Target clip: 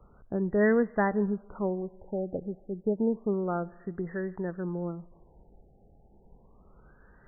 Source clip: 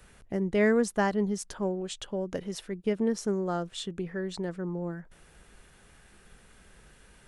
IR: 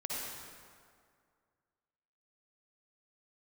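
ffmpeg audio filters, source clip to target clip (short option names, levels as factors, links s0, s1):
-filter_complex "[0:a]asplit=2[s0][s1];[1:a]atrim=start_sample=2205,asetrate=57330,aresample=44100[s2];[s1][s2]afir=irnorm=-1:irlink=0,volume=0.0708[s3];[s0][s3]amix=inputs=2:normalize=0,afftfilt=real='re*lt(b*sr/1024,840*pow(2100/840,0.5+0.5*sin(2*PI*0.3*pts/sr)))':imag='im*lt(b*sr/1024,840*pow(2100/840,0.5+0.5*sin(2*PI*0.3*pts/sr)))':win_size=1024:overlap=0.75"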